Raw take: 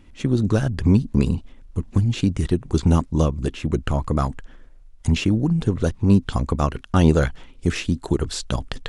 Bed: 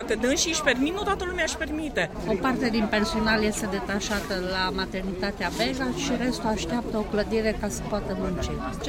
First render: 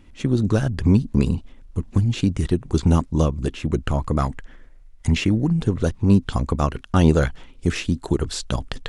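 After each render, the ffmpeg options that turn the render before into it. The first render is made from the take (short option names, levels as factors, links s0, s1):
-filter_complex "[0:a]asettb=1/sr,asplit=3[s0][s1][s2];[s0]atrim=end=4.194[s3];[s1]atrim=start=4.19:end=5.53,asetpts=PTS-STARTPTS,afade=t=in:d=0.004:c=qsin,afade=t=out:st=1.336:d=0.004:c=qsin,equalizer=f=2000:t=o:w=0.38:g=7[s4];[s2]atrim=start=5.526[s5];[s3][s4]acrossfade=d=0.004:c1=hsin:c2=qsin[s6];[s6][s5]acrossfade=d=0.004:c1=qsin:c2=hsin"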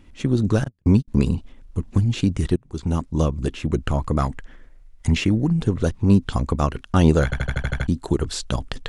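-filter_complex "[0:a]asettb=1/sr,asplit=3[s0][s1][s2];[s0]atrim=end=0.644[s3];[s1]atrim=start=0.64:end=1.08,asetpts=PTS-STARTPTS,afade=t=in:d=0.004:c=qsin,afade=t=out:st=0.436:d=0.004:c=qsin,agate=range=0.00501:threshold=0.1:ratio=16:release=100:detection=peak[s4];[s2]atrim=start=1.076[s5];[s3][s4]acrossfade=d=0.004:c1=hsin:c2=qsin[s6];[s6][s5]acrossfade=d=0.004:c1=qsin:c2=hsin,asplit=10[s7][s8][s9][s10][s11][s12][s13][s14][s15][s16];[s7]atrim=end=2.56,asetpts=PTS-STARTPTS,afade=t=out:st=2.556:d=0.004:c=hsin:silence=0.0841395[s17];[s8]atrim=start=2.56:end=7.322,asetpts=PTS-STARTPTS,afade=t=in:d=0.77:silence=0.0841395[s18];[s9]atrim=start=7.238:end=7.322[s19];[s10]atrim=start=7.238:end=7.322[s20];[s11]atrim=start=7.238:end=7.322[s21];[s12]atrim=start=7.238:end=7.322[s22];[s13]atrim=start=7.238:end=7.322[s23];[s14]atrim=start=7.238:end=7.322[s24];[s15]atrim=start=7.238:end=7.322[s25];[s16]atrim=start=7.878[s26];[s17][s18]concat=n=2:v=0:a=1[s27];[s27][s19]acrossfade=d=0.004:c1=hsin:c2=hsin[s28];[s28][s20]acrossfade=d=0.004:c1=hsin:c2=hsin[s29];[s29][s21]acrossfade=d=0.004:c1=hsin:c2=hsin[s30];[s30][s22]acrossfade=d=0.004:c1=hsin:c2=hsin[s31];[s31][s23]acrossfade=d=0.004:c1=hsin:c2=hsin[s32];[s32][s24]acrossfade=d=0.004:c1=hsin:c2=hsin[s33];[s33][s25]acrossfade=d=0.004:c1=hsin:c2=hsin[s34];[s34][s26]acrossfade=d=0.004:c1=hsin:c2=hsin"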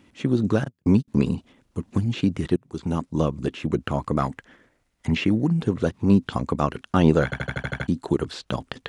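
-filter_complex "[0:a]acrossover=split=4000[s0][s1];[s1]acompressor=threshold=0.00355:ratio=4:attack=1:release=60[s2];[s0][s2]amix=inputs=2:normalize=0,highpass=140"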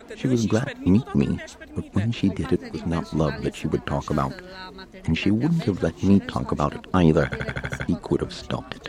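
-filter_complex "[1:a]volume=0.237[s0];[0:a][s0]amix=inputs=2:normalize=0"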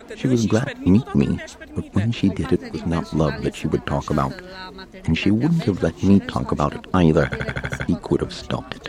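-af "volume=1.41,alimiter=limit=0.708:level=0:latency=1"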